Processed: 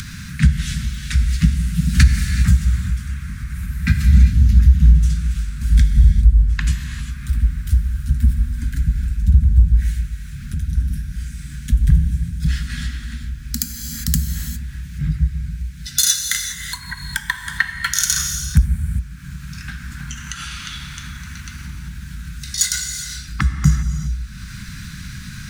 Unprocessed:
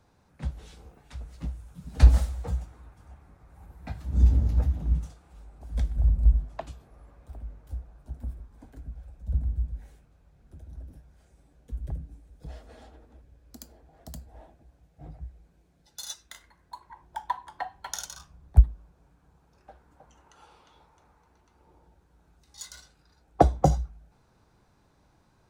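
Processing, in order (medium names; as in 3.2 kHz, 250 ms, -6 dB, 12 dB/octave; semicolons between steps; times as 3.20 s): compression 6:1, threshold -32 dBFS, peak gain reduction 21.5 dB; bass shelf 100 Hz -5 dB; gated-style reverb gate 430 ms flat, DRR 6.5 dB; dynamic bell 3.6 kHz, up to -5 dB, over -59 dBFS, Q 1.2; Chebyshev band-stop 200–1600 Hz, order 3; upward compressor, threshold -49 dBFS; loudness maximiser +28 dB; trim -1 dB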